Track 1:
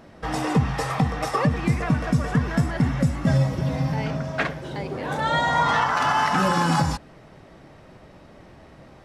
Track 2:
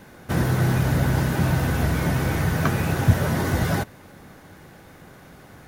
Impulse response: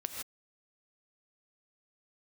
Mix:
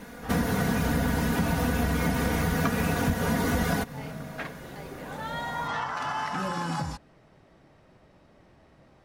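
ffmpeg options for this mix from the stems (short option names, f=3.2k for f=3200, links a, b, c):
-filter_complex "[0:a]volume=-10dB[a];[1:a]aecho=1:1:4.2:0.85,volume=0.5dB,asplit=2[b][c];[c]apad=whole_len=398962[d];[a][d]sidechaincompress=threshold=-42dB:ratio=8:attack=16:release=116[e];[e][b]amix=inputs=2:normalize=0,acompressor=threshold=-22dB:ratio=6"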